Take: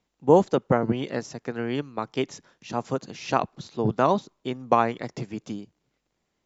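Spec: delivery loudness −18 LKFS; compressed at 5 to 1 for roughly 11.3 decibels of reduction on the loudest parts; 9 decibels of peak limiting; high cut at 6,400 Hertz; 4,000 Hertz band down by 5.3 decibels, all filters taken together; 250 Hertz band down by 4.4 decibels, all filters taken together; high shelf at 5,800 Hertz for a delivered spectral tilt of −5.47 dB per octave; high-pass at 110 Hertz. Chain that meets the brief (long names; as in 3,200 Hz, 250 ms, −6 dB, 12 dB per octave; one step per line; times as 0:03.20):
high-pass filter 110 Hz
low-pass filter 6,400 Hz
parametric band 250 Hz −5.5 dB
parametric band 4,000 Hz −4 dB
high-shelf EQ 5,800 Hz −8.5 dB
downward compressor 5 to 1, threshold −25 dBFS
level +18.5 dB
brickwall limiter −3 dBFS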